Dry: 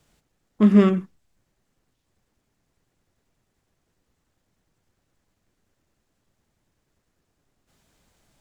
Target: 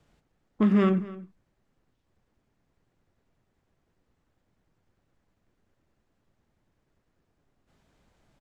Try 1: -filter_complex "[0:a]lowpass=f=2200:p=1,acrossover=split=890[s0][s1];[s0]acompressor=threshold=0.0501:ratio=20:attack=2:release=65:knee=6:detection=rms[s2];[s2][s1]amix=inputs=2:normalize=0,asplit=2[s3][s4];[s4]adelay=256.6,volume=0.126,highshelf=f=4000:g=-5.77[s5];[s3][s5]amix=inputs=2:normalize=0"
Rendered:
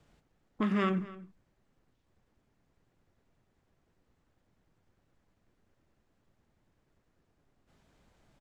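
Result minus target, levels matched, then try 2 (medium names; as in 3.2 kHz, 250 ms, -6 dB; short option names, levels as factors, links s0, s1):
compression: peak gain reduction +9.5 dB
-filter_complex "[0:a]lowpass=f=2200:p=1,acrossover=split=890[s0][s1];[s0]acompressor=threshold=0.158:ratio=20:attack=2:release=65:knee=6:detection=rms[s2];[s2][s1]amix=inputs=2:normalize=0,asplit=2[s3][s4];[s4]adelay=256.6,volume=0.126,highshelf=f=4000:g=-5.77[s5];[s3][s5]amix=inputs=2:normalize=0"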